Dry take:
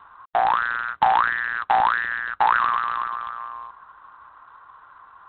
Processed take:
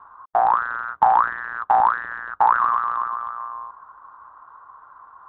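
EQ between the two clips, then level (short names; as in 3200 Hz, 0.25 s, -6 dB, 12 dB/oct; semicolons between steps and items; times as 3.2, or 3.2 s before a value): tone controls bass -2 dB, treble -3 dB; resonant high shelf 1700 Hz -12.5 dB, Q 1.5; 0.0 dB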